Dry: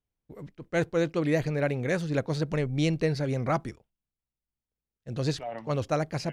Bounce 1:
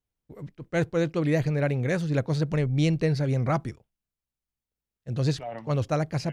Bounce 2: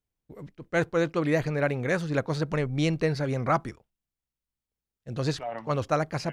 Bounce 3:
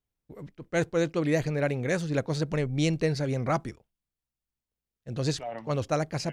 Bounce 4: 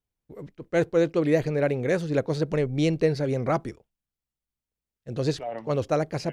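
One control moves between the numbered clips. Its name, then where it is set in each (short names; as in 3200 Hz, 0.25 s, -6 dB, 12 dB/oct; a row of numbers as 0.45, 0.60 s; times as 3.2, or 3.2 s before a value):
dynamic EQ, frequency: 120, 1200, 7300, 430 Hz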